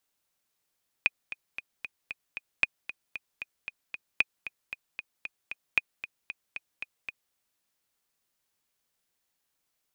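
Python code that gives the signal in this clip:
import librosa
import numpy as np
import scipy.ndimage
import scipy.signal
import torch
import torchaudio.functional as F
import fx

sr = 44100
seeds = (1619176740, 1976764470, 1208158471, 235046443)

y = fx.click_track(sr, bpm=229, beats=6, bars=4, hz=2480.0, accent_db=14.0, level_db=-8.5)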